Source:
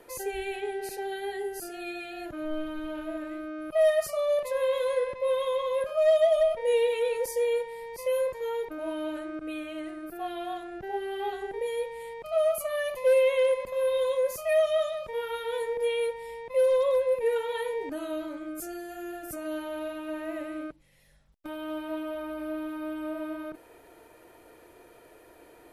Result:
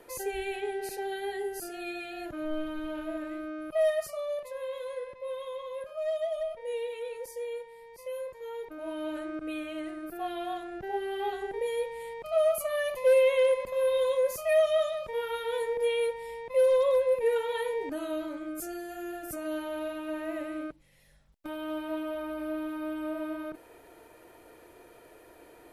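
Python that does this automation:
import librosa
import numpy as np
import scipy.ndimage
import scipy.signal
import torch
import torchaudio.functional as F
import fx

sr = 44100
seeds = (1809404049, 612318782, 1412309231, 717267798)

y = fx.gain(x, sr, db=fx.line((3.51, -0.5), (4.56, -10.0), (8.3, -10.0), (9.23, 0.0)))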